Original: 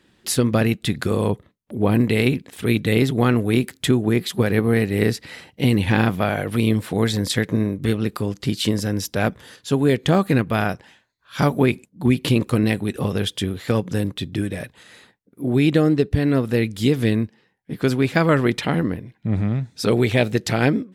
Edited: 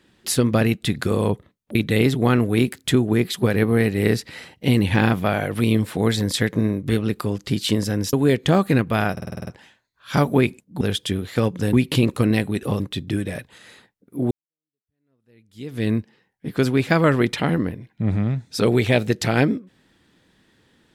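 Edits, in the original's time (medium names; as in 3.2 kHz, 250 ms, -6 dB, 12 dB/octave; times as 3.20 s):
1.75–2.71 s: delete
9.09–9.73 s: delete
10.72 s: stutter 0.05 s, 8 plays
13.13–14.05 s: move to 12.06 s
15.56–17.15 s: fade in exponential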